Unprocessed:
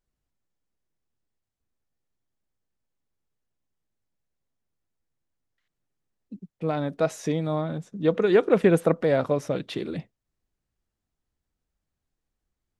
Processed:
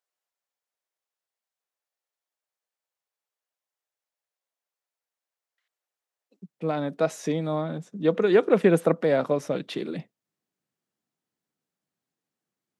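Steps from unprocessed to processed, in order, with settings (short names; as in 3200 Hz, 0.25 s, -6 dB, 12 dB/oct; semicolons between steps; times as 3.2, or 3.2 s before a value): HPF 530 Hz 24 dB/oct, from 6.42 s 150 Hz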